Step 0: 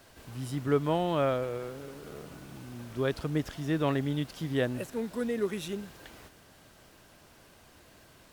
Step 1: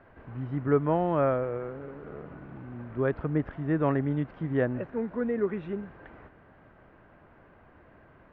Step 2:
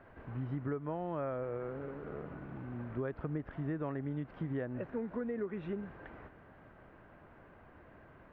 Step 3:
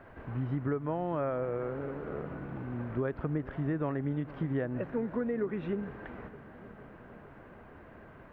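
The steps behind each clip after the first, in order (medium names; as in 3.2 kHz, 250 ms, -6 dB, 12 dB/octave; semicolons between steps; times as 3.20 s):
low-pass 1.9 kHz 24 dB/octave; trim +2.5 dB
compression 12:1, threshold -32 dBFS, peak gain reduction 15 dB; trim -1.5 dB
filtered feedback delay 459 ms, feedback 72%, level -19 dB; trim +5 dB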